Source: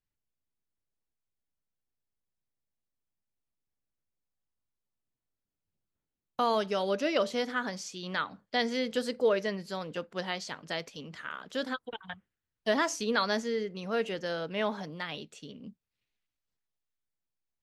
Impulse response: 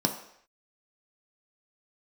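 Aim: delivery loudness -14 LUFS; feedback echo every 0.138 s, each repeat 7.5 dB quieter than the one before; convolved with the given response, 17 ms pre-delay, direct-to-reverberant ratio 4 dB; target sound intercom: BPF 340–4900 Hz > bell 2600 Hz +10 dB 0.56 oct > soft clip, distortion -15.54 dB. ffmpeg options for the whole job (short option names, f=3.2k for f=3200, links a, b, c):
-filter_complex "[0:a]aecho=1:1:138|276|414|552|690:0.422|0.177|0.0744|0.0312|0.0131,asplit=2[a][b];[1:a]atrim=start_sample=2205,adelay=17[c];[b][c]afir=irnorm=-1:irlink=0,volume=-13dB[d];[a][d]amix=inputs=2:normalize=0,highpass=340,lowpass=4.9k,equalizer=f=2.6k:t=o:w=0.56:g=10,asoftclip=threshold=-19.5dB,volume=17dB"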